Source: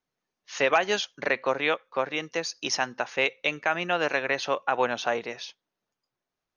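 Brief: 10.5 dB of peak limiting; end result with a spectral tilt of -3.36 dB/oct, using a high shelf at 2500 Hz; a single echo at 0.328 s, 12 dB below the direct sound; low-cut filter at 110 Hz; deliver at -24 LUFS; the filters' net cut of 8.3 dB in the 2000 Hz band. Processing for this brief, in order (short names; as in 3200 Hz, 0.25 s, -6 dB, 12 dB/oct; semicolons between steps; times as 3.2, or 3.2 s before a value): HPF 110 Hz; bell 2000 Hz -8 dB; high shelf 2500 Hz -6 dB; limiter -22.5 dBFS; echo 0.328 s -12 dB; gain +10.5 dB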